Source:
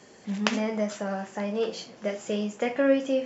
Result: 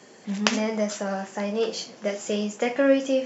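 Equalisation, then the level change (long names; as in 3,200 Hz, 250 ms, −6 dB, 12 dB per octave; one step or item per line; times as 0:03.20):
high-pass filter 140 Hz
dynamic equaliser 6,000 Hz, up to +6 dB, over −54 dBFS, Q 1.1
+2.5 dB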